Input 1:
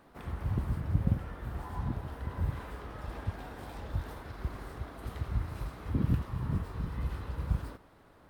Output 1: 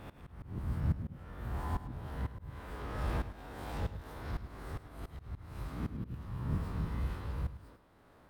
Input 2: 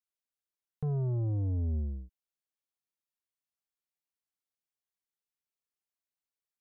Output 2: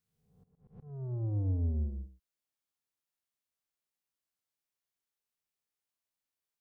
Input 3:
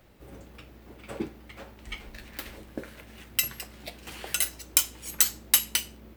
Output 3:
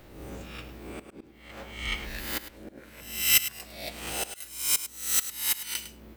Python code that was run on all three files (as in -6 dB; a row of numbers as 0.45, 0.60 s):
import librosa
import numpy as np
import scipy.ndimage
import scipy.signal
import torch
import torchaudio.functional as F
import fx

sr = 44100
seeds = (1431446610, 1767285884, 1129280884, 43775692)

p1 = fx.spec_swells(x, sr, rise_s=0.76)
p2 = fx.auto_swell(p1, sr, attack_ms=677.0)
p3 = fx.rider(p2, sr, range_db=4, speed_s=2.0)
y = p3 + fx.echo_single(p3, sr, ms=104, db=-12.5, dry=0)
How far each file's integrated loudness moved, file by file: -4.0, -2.0, -1.5 LU